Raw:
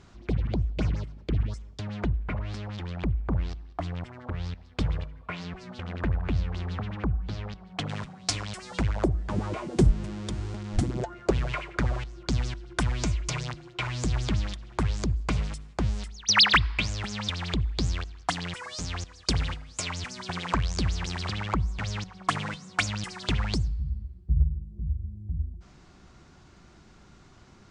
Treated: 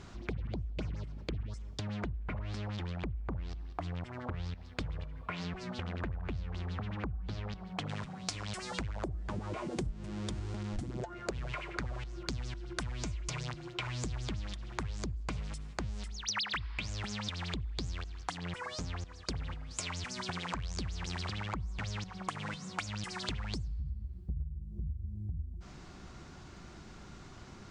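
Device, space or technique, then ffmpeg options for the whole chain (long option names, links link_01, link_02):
serial compression, peaks first: -filter_complex "[0:a]asettb=1/sr,asplit=3[link_01][link_02][link_03];[link_01]atrim=end=18.374[link_04];[link_02]atrim=start=18.37:end=19.71,asetpts=PTS-STARTPTS,afade=type=in:duration=0.004:curve=qsin,afade=type=out:start_time=1.336:duration=0.004:curve=qsin,highshelf=frequency=2500:gain=-10[link_05];[link_03]atrim=start=19.706[link_06];[link_04][link_05]acrossfade=duration=0.004:curve1=hsin:curve2=qsin[link_07];[link_07][link_06]acrossfade=duration=0.004:curve1=qsin:curve2=hsin,acompressor=threshold=-36dB:ratio=4,acompressor=threshold=-43dB:ratio=1.5,volume=3.5dB"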